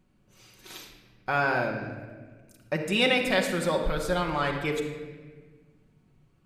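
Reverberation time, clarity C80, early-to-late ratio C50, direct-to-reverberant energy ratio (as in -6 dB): 1.5 s, 7.0 dB, 5.5 dB, 1.0 dB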